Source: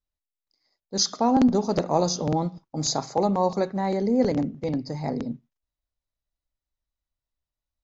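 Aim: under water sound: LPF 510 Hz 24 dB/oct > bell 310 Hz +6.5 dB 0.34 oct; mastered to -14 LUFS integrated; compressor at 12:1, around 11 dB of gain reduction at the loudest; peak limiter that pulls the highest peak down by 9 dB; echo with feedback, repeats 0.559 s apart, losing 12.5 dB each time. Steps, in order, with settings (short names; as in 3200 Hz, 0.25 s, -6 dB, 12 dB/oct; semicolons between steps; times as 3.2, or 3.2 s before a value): compressor 12:1, threshold -26 dBFS; limiter -25 dBFS; LPF 510 Hz 24 dB/oct; bell 310 Hz +6.5 dB 0.34 oct; feedback echo 0.559 s, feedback 24%, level -12.5 dB; gain +20 dB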